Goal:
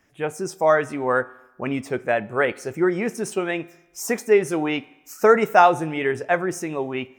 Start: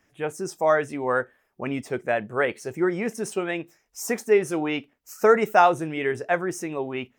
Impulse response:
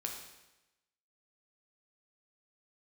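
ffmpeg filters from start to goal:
-filter_complex "[0:a]asplit=2[s0][s1];[s1]equalizer=f=430:w=1.5:g=-3.5[s2];[1:a]atrim=start_sample=2205,highshelf=f=5400:g=-10[s3];[s2][s3]afir=irnorm=-1:irlink=0,volume=0.224[s4];[s0][s4]amix=inputs=2:normalize=0,volume=1.19"

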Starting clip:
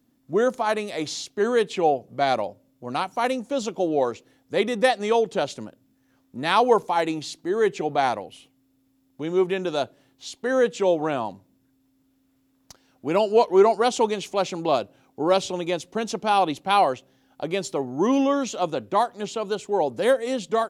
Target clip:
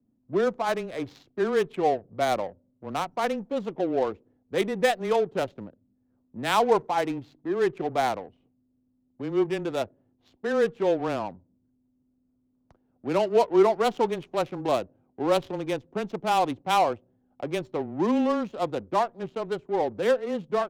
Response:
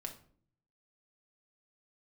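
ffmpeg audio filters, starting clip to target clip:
-af "adynamicsmooth=sensitivity=3:basefreq=610,afreqshift=-13,volume=0.708"

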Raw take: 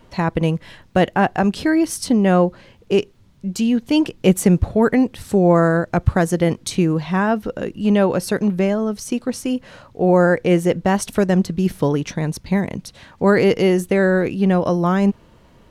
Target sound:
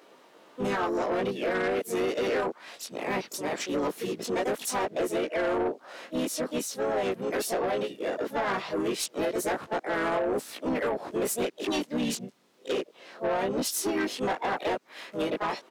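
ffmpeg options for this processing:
-filter_complex "[0:a]areverse,flanger=delay=19:depth=2.4:speed=0.2,highpass=f=310:w=0.5412,highpass=f=310:w=1.3066,asplit=4[s0][s1][s2][s3];[s1]asetrate=29433,aresample=44100,atempo=1.49831,volume=0.282[s4];[s2]asetrate=37084,aresample=44100,atempo=1.18921,volume=0.282[s5];[s3]asetrate=55563,aresample=44100,atempo=0.793701,volume=0.708[s6];[s0][s4][s5][s6]amix=inputs=4:normalize=0,alimiter=limit=0.188:level=0:latency=1:release=238,asoftclip=type=tanh:threshold=0.0708"

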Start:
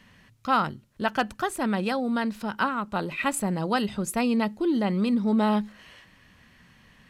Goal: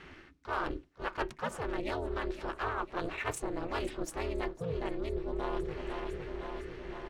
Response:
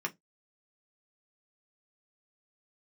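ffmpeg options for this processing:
-filter_complex "[0:a]adynamicsmooth=sensitivity=6.5:basefreq=5600,aecho=1:1:506|1012|1518|2024|2530:0.133|0.0773|0.0449|0.026|0.0151,asplit=3[s0][s1][s2];[s1]asetrate=37084,aresample=44100,atempo=1.18921,volume=0.708[s3];[s2]asetrate=66075,aresample=44100,atempo=0.66742,volume=0.141[s4];[s0][s3][s4]amix=inputs=3:normalize=0,areverse,acompressor=threshold=0.0141:ratio=5,areverse,aeval=exprs='val(0)*sin(2*PI*170*n/s)':c=same,asplit=2[s5][s6];[1:a]atrim=start_sample=2205[s7];[s6][s7]afir=irnorm=-1:irlink=0,volume=0.188[s8];[s5][s8]amix=inputs=2:normalize=0,volume=1.78"

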